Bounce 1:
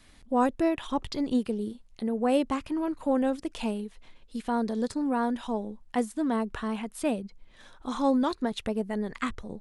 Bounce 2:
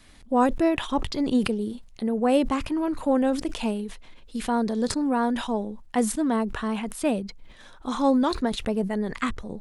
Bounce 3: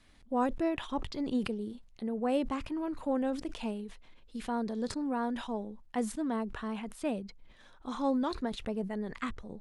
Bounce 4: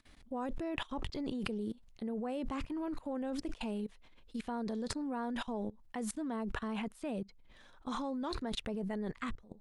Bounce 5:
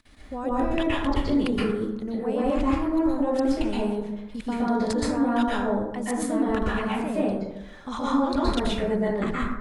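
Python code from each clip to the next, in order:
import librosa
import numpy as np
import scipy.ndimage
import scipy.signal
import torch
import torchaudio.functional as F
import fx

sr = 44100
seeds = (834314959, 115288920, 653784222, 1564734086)

y1 = fx.sustainer(x, sr, db_per_s=92.0)
y1 = y1 * 10.0 ** (3.5 / 20.0)
y2 = fx.high_shelf(y1, sr, hz=8200.0, db=-8.5)
y2 = y2 * 10.0 ** (-9.0 / 20.0)
y3 = fx.level_steps(y2, sr, step_db=21)
y3 = y3 * 10.0 ** (5.0 / 20.0)
y4 = fx.rev_plate(y3, sr, seeds[0], rt60_s=0.96, hf_ratio=0.35, predelay_ms=110, drr_db=-7.5)
y4 = y4 * 10.0 ** (5.0 / 20.0)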